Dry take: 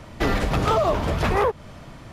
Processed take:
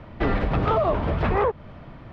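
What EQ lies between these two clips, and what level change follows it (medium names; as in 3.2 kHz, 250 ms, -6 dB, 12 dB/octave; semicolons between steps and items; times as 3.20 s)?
distance through air 350 m; 0.0 dB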